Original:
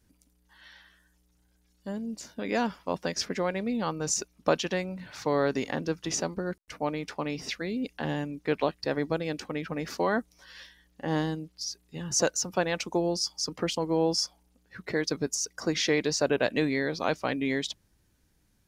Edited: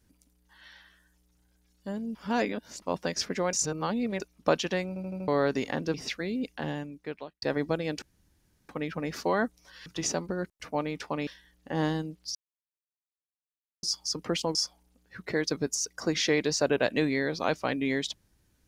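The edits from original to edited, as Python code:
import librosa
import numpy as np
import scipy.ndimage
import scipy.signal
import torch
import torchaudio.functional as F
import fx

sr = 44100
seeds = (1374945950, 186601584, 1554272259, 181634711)

y = fx.edit(x, sr, fx.reverse_span(start_s=2.15, length_s=0.67),
    fx.reverse_span(start_s=3.53, length_s=0.67),
    fx.stutter_over(start_s=4.88, slice_s=0.08, count=5),
    fx.move(start_s=5.94, length_s=1.41, to_s=10.6),
    fx.fade_out_span(start_s=7.85, length_s=0.98),
    fx.insert_room_tone(at_s=9.43, length_s=0.67),
    fx.silence(start_s=11.68, length_s=1.48),
    fx.cut(start_s=13.88, length_s=0.27), tone=tone)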